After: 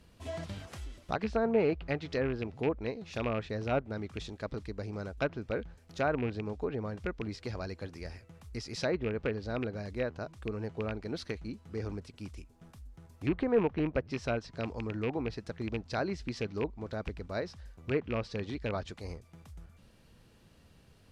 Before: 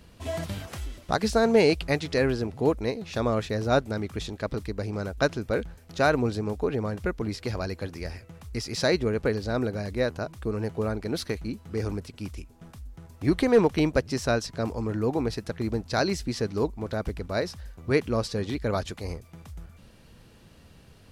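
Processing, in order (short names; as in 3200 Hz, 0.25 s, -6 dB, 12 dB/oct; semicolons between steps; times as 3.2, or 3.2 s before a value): rattling part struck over -24 dBFS, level -18 dBFS; treble ducked by the level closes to 1600 Hz, closed at -19 dBFS; gain -7.5 dB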